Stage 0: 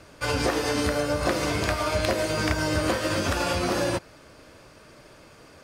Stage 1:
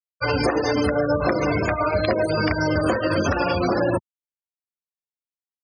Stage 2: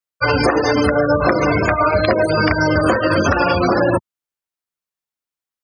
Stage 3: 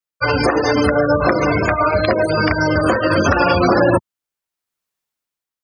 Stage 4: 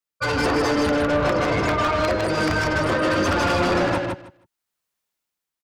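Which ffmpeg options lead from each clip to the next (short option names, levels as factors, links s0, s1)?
-filter_complex "[0:a]afftfilt=real='re*gte(hypot(re,im),0.0631)':imag='im*gte(hypot(re,im),0.0631)':win_size=1024:overlap=0.75,highpass=83,asplit=2[s0][s1];[s1]alimiter=limit=0.0891:level=0:latency=1:release=178,volume=1.33[s2];[s0][s2]amix=inputs=2:normalize=0"
-af "equalizer=f=1300:t=o:w=0.94:g=3.5,volume=1.78"
-af "dynaudnorm=f=140:g=9:m=2.99,volume=0.891"
-filter_complex "[0:a]asoftclip=type=tanh:threshold=0.106,asplit=2[s0][s1];[s1]aecho=0:1:157|314|471:0.631|0.101|0.0162[s2];[s0][s2]amix=inputs=2:normalize=0"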